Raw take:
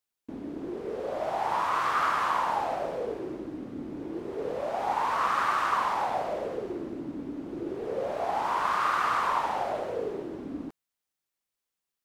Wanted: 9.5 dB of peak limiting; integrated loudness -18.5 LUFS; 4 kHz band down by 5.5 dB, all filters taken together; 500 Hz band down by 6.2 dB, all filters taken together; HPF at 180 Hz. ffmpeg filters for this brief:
-af "highpass=180,equalizer=f=500:t=o:g=-8,equalizer=f=4000:t=o:g=-7.5,volume=7.5,alimiter=limit=0.398:level=0:latency=1"

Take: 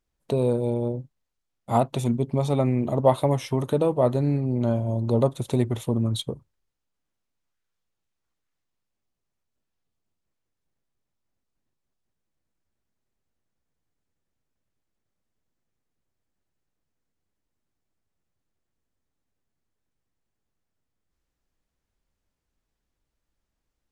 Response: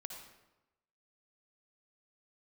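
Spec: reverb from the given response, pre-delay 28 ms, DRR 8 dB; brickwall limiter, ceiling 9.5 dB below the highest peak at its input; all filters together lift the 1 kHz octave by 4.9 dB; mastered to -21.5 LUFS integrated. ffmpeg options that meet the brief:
-filter_complex "[0:a]equalizer=f=1000:t=o:g=6.5,alimiter=limit=0.224:level=0:latency=1,asplit=2[s0][s1];[1:a]atrim=start_sample=2205,adelay=28[s2];[s1][s2]afir=irnorm=-1:irlink=0,volume=0.562[s3];[s0][s3]amix=inputs=2:normalize=0,volume=1.5"

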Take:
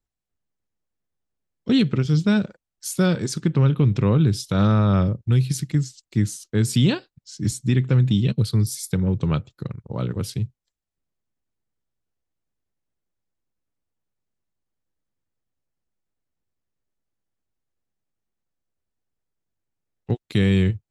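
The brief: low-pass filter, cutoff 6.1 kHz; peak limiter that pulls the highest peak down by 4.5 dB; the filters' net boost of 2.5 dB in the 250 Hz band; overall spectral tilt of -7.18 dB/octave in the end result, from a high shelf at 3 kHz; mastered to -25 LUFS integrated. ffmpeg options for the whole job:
-af "lowpass=6100,equalizer=f=250:t=o:g=3.5,highshelf=f=3000:g=4.5,volume=0.668,alimiter=limit=0.2:level=0:latency=1"

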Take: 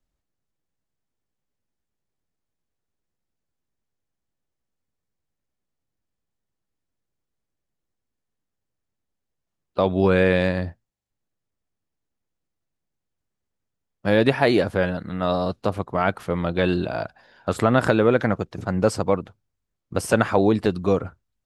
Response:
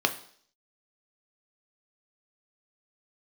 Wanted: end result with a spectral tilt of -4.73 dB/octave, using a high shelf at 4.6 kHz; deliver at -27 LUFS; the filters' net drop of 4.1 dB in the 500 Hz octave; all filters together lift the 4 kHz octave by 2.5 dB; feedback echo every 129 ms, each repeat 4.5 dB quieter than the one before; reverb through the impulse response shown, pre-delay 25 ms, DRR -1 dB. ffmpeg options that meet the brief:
-filter_complex "[0:a]equalizer=f=500:t=o:g=-5,equalizer=f=4000:t=o:g=4.5,highshelf=f=4600:g=-3.5,aecho=1:1:129|258|387|516|645|774|903|1032|1161:0.596|0.357|0.214|0.129|0.0772|0.0463|0.0278|0.0167|0.01,asplit=2[s0][s1];[1:a]atrim=start_sample=2205,adelay=25[s2];[s1][s2]afir=irnorm=-1:irlink=0,volume=0.299[s3];[s0][s3]amix=inputs=2:normalize=0,volume=0.422"

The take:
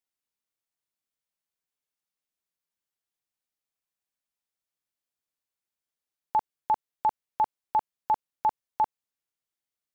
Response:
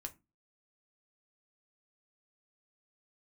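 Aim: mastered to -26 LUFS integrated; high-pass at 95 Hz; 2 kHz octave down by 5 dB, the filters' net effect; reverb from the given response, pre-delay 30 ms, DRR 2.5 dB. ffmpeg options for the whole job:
-filter_complex "[0:a]highpass=95,equalizer=f=2000:t=o:g=-7,asplit=2[s0][s1];[1:a]atrim=start_sample=2205,adelay=30[s2];[s1][s2]afir=irnorm=-1:irlink=0,volume=1.12[s3];[s0][s3]amix=inputs=2:normalize=0,volume=1.33"

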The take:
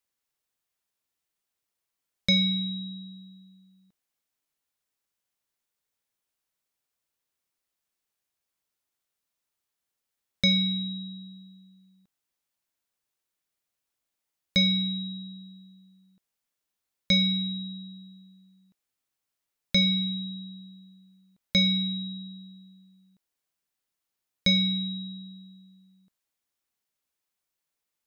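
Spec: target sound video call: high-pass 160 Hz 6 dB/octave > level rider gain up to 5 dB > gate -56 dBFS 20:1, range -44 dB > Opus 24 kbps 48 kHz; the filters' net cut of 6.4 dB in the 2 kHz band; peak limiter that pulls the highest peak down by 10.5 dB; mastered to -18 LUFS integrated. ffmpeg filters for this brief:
-af "equalizer=f=2000:t=o:g=-7,alimiter=limit=0.0668:level=0:latency=1,highpass=f=160:p=1,dynaudnorm=m=1.78,agate=range=0.00631:threshold=0.00158:ratio=20,volume=3.98" -ar 48000 -c:a libopus -b:a 24k

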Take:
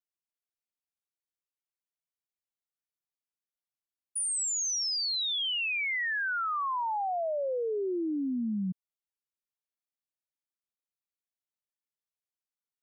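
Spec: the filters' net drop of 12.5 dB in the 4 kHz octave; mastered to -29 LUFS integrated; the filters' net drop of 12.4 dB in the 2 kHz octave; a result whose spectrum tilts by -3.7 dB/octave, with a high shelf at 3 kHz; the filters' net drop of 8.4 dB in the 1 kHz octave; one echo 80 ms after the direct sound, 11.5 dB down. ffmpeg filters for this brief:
-af "equalizer=f=1000:t=o:g=-7.5,equalizer=f=2000:t=o:g=-9,highshelf=f=3000:g=-8,equalizer=f=4000:t=o:g=-6.5,aecho=1:1:80:0.266,volume=2.24"

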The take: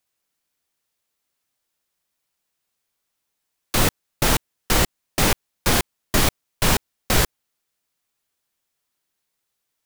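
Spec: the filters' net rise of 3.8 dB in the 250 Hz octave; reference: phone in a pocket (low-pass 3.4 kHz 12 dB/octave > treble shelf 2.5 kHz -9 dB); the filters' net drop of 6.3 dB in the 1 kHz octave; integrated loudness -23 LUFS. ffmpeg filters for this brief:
-af "lowpass=3400,equalizer=f=250:t=o:g=5.5,equalizer=f=1000:t=o:g=-7,highshelf=f=2500:g=-9,volume=1.33"

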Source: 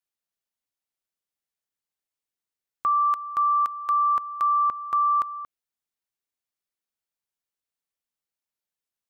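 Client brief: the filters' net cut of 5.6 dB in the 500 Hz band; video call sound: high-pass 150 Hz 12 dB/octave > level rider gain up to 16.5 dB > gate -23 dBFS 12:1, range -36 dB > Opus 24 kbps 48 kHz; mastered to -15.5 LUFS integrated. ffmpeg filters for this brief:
-af "highpass=150,equalizer=f=500:t=o:g=-7.5,dynaudnorm=m=6.68,agate=range=0.0158:threshold=0.0708:ratio=12,volume=2.82" -ar 48000 -c:a libopus -b:a 24k

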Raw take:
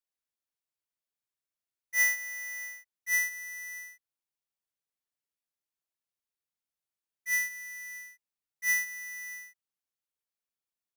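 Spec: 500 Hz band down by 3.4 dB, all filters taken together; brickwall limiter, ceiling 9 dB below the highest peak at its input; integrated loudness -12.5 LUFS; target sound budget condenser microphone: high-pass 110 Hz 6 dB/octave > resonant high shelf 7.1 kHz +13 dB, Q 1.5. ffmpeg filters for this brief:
-af "equalizer=f=500:t=o:g=-5,alimiter=level_in=1.88:limit=0.0631:level=0:latency=1,volume=0.531,highpass=f=110:p=1,highshelf=f=7100:t=q:w=1.5:g=13,volume=6.68"

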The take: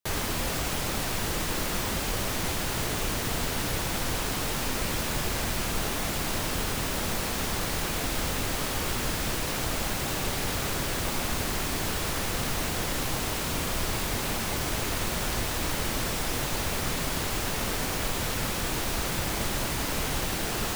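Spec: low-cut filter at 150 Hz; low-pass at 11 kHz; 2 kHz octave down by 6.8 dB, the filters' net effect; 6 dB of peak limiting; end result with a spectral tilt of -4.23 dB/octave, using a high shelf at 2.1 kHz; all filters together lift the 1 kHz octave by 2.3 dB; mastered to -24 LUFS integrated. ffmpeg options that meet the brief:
-af "highpass=150,lowpass=11000,equalizer=f=1000:t=o:g=6,equalizer=f=2000:t=o:g=-8.5,highshelf=f=2100:g=-4.5,volume=3.16,alimiter=limit=0.188:level=0:latency=1"

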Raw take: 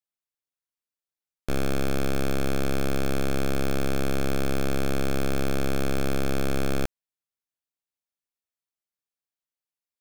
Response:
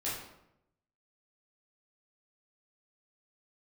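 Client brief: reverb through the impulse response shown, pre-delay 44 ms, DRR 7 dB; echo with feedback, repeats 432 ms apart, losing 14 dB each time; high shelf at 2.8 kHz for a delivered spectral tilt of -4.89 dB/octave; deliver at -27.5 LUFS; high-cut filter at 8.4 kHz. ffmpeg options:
-filter_complex "[0:a]lowpass=8400,highshelf=f=2800:g=6,aecho=1:1:432|864:0.2|0.0399,asplit=2[s0][s1];[1:a]atrim=start_sample=2205,adelay=44[s2];[s1][s2]afir=irnorm=-1:irlink=0,volume=0.282[s3];[s0][s3]amix=inputs=2:normalize=0,volume=0.944"

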